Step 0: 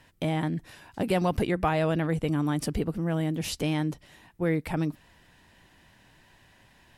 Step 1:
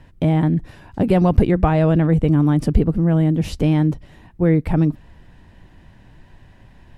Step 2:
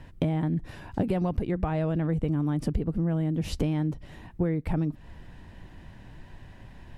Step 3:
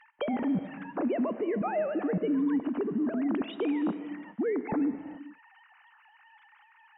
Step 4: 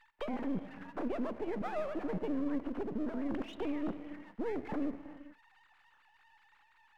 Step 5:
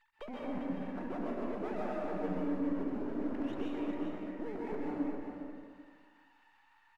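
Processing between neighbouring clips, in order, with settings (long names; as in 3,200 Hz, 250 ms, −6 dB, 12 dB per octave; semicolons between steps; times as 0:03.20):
spectral tilt −3 dB per octave; level +5 dB
downward compressor 12 to 1, threshold −23 dBFS, peak gain reduction 17 dB
three sine waves on the formant tracks; brickwall limiter −22 dBFS, peak gain reduction 8 dB; reverb whose tail is shaped and stops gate 450 ms flat, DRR 10.5 dB; level −1 dB
gain on one half-wave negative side −12 dB; level −4 dB
single-tap delay 401 ms −7.5 dB; dense smooth reverb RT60 1.6 s, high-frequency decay 0.55×, pre-delay 115 ms, DRR −4.5 dB; level −7 dB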